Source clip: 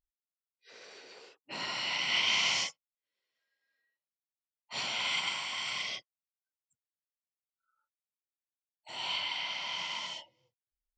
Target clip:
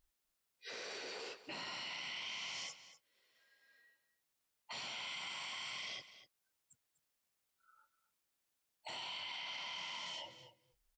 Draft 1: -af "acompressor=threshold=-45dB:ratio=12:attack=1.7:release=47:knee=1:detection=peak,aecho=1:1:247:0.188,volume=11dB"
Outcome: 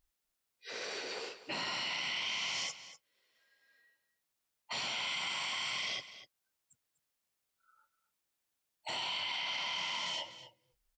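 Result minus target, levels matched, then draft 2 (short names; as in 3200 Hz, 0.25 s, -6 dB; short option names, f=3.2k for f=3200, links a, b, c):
compressor: peak gain reduction -8 dB
-af "acompressor=threshold=-53.5dB:ratio=12:attack=1.7:release=47:knee=1:detection=peak,aecho=1:1:247:0.188,volume=11dB"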